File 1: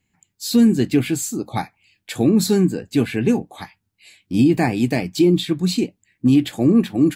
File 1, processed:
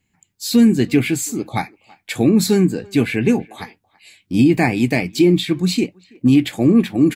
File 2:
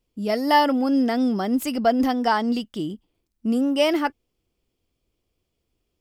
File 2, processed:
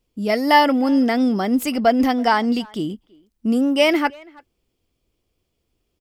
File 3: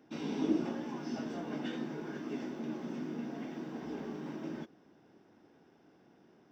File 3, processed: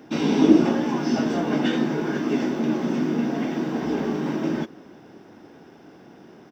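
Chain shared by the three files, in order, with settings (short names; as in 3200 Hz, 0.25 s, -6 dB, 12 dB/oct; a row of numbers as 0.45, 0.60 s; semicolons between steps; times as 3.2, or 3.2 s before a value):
dynamic EQ 2200 Hz, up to +7 dB, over -46 dBFS, Q 3.4; speakerphone echo 0.33 s, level -24 dB; normalise peaks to -3 dBFS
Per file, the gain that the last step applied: +1.5, +3.0, +16.0 dB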